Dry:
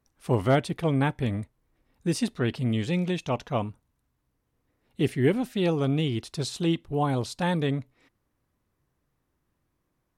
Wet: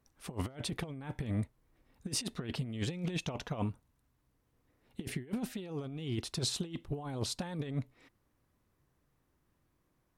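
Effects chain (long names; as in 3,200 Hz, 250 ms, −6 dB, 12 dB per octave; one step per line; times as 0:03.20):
compressor whose output falls as the input rises −30 dBFS, ratio −0.5
level −5.5 dB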